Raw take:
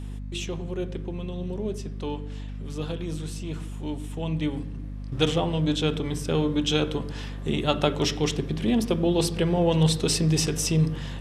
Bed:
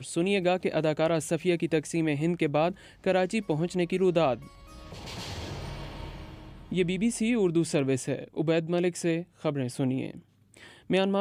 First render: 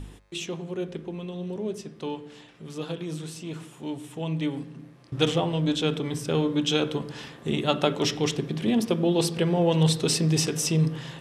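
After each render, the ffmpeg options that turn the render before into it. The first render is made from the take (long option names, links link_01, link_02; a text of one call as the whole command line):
ffmpeg -i in.wav -af "bandreject=frequency=50:width_type=h:width=4,bandreject=frequency=100:width_type=h:width=4,bandreject=frequency=150:width_type=h:width=4,bandreject=frequency=200:width_type=h:width=4,bandreject=frequency=250:width_type=h:width=4" out.wav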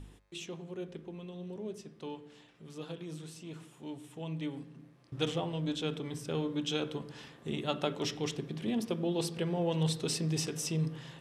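ffmpeg -i in.wav -af "volume=-9.5dB" out.wav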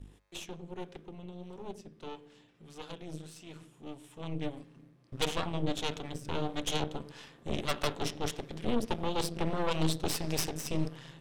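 ffmpeg -i in.wav -filter_complex "[0:a]acrossover=split=450[link_01][link_02];[link_01]aeval=exprs='val(0)*(1-0.5/2+0.5/2*cos(2*PI*1.6*n/s))':channel_layout=same[link_03];[link_02]aeval=exprs='val(0)*(1-0.5/2-0.5/2*cos(2*PI*1.6*n/s))':channel_layout=same[link_04];[link_03][link_04]amix=inputs=2:normalize=0,aeval=exprs='0.133*(cos(1*acos(clip(val(0)/0.133,-1,1)))-cos(1*PI/2))+0.0376*(cos(8*acos(clip(val(0)/0.133,-1,1)))-cos(8*PI/2))':channel_layout=same" out.wav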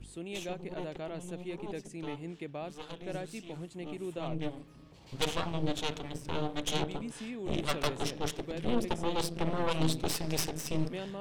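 ffmpeg -i in.wav -i bed.wav -filter_complex "[1:a]volume=-15dB[link_01];[0:a][link_01]amix=inputs=2:normalize=0" out.wav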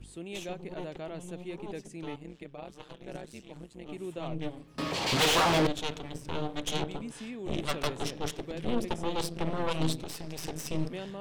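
ffmpeg -i in.wav -filter_complex "[0:a]asettb=1/sr,asplit=3[link_01][link_02][link_03];[link_01]atrim=end=2.164[link_04];[link_02]atrim=start=2.16:end=3.89,asetpts=PTS-STARTPTS,afade=type=in:duration=0.004:curve=qsin,afade=type=out:start_time=1.726:duration=0.004:curve=qsin,tremolo=f=130:d=0.889[link_05];[link_03]atrim=start=3.886[link_06];[link_04][link_05]acrossfade=duration=0.004:curve1=hsin:curve2=qsin[link_07];[link_07][link_06]acrossfade=duration=0.004:curve1=qsin:curve2=hsin,asettb=1/sr,asplit=3[link_08][link_09][link_10];[link_08]atrim=end=4.784[link_11];[link_09]atrim=start=4.78:end=5.67,asetpts=PTS-STARTPTS,afade=type=in:duration=0.004:curve=qsin,afade=type=out:start_time=0.886:duration=0.004:curve=qsin,asplit=2[link_12][link_13];[link_13]highpass=frequency=720:poles=1,volume=38dB,asoftclip=type=tanh:threshold=-17dB[link_14];[link_12][link_14]amix=inputs=2:normalize=0,lowpass=frequency=5800:poles=1,volume=-6dB[link_15];[link_10]atrim=start=5.666[link_16];[link_11][link_15]acrossfade=duration=0.004:curve1=hsin:curve2=qsin[link_17];[link_17][link_16]acrossfade=duration=0.004:curve1=qsin:curve2=hsin,asplit=3[link_18][link_19][link_20];[link_18]afade=type=out:start_time=9.95:duration=0.02[link_21];[link_19]acompressor=threshold=-34dB:ratio=5:attack=3.2:release=140:knee=1:detection=peak,afade=type=in:start_time=9.95:duration=0.02,afade=type=out:start_time=10.43:duration=0.02[link_22];[link_20]afade=type=in:start_time=10.43:duration=0.02[link_23];[link_21][link_22][link_23]amix=inputs=3:normalize=0" out.wav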